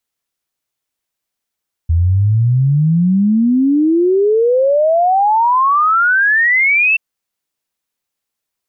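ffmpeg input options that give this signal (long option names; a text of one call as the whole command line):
ffmpeg -f lavfi -i "aevalsrc='0.355*clip(min(t,5.08-t)/0.01,0,1)*sin(2*PI*80*5.08/log(2700/80)*(exp(log(2700/80)*t/5.08)-1))':duration=5.08:sample_rate=44100" out.wav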